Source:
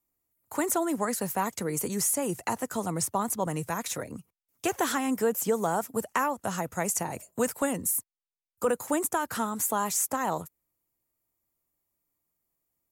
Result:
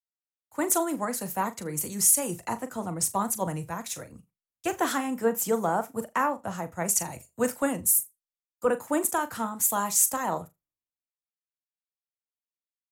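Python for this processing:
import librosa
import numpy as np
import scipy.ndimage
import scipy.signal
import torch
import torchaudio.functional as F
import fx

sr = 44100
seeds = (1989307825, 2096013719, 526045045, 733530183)

p1 = fx.notch(x, sr, hz=420.0, q=12.0)
p2 = p1 + fx.room_flutter(p1, sr, wall_m=6.9, rt60_s=0.21, dry=0)
y = fx.band_widen(p2, sr, depth_pct=100)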